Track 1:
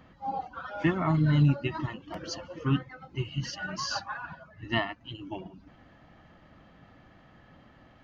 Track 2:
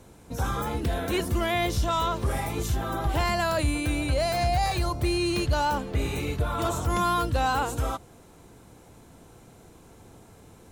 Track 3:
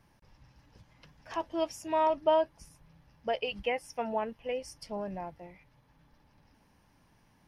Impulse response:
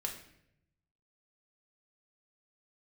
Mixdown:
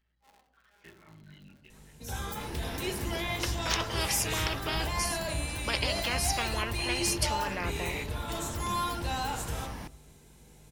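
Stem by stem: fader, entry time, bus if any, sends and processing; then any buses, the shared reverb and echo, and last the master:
-18.5 dB, 0.00 s, bus A, send -11 dB, cycle switcher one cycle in 3, muted; hum 60 Hz, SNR 14 dB
-3.5 dB, 1.70 s, bus A, send -6 dB, hum 50 Hz, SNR 18 dB
+2.5 dB, 2.40 s, no bus, no send, spectrum-flattening compressor 10:1
bus A: 0.0 dB, inverse Chebyshev high-pass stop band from 540 Hz, stop band 50 dB; peak limiter -30.5 dBFS, peak gain reduction 7.5 dB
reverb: on, RT60 0.75 s, pre-delay 5 ms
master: none

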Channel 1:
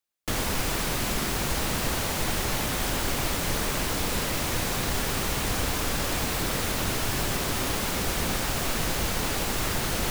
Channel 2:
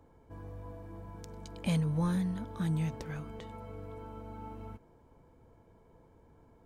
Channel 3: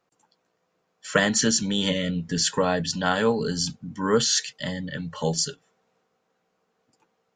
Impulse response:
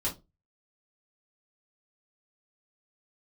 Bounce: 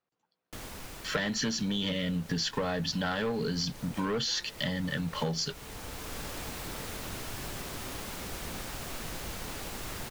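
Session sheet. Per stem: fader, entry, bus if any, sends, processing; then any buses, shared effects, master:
-11.5 dB, 0.25 s, no send, auto duck -7 dB, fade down 1.20 s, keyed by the third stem
-7.0 dB, 2.30 s, no send, steep high-pass 340 Hz 48 dB/octave
-5.5 dB, 0.00 s, no send, waveshaping leveller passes 3; low-pass 5.1 kHz 24 dB/octave; peaking EQ 550 Hz -3 dB 2.8 oct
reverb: none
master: compression 12:1, threshold -28 dBFS, peak gain reduction 11.5 dB

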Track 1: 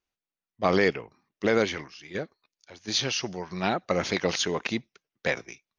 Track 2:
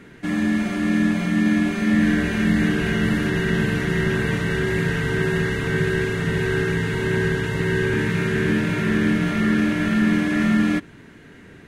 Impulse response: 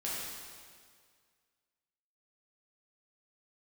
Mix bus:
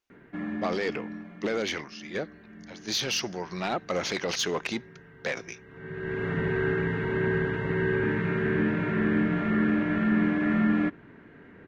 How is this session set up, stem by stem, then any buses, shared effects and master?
+2.5 dB, 0.00 s, no send, peak limiter -17 dBFS, peak gain reduction 8 dB; saturation -22 dBFS, distortion -16 dB
-2.5 dB, 0.10 s, no send, low-pass 1.7 kHz 12 dB/octave; auto duck -23 dB, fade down 1.75 s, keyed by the first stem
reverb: none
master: bass shelf 160 Hz -8 dB

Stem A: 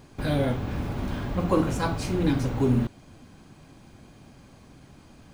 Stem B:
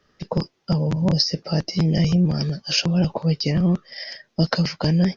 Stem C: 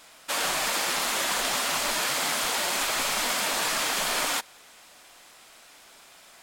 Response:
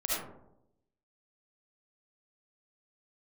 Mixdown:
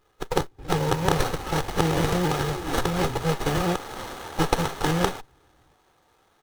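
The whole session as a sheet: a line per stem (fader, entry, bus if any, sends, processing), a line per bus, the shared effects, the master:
-13.0 dB, 0.40 s, no send, none
-3.0 dB, 0.00 s, no send, formants flattened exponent 0.3
-9.5 dB, 0.80 s, no send, none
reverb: none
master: comb 2.4 ms, depth 95%; sliding maximum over 17 samples

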